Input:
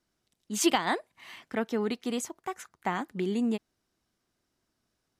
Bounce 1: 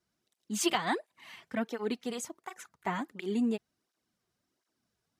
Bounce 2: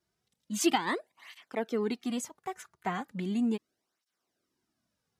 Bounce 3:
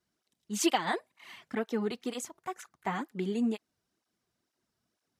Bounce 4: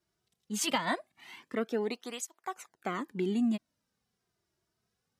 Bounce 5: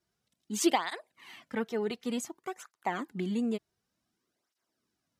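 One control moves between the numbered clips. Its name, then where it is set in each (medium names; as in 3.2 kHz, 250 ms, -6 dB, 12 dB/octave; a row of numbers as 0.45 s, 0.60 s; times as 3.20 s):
cancelling through-zero flanger, nulls at: 1.4 Hz, 0.37 Hz, 2.1 Hz, 0.22 Hz, 0.55 Hz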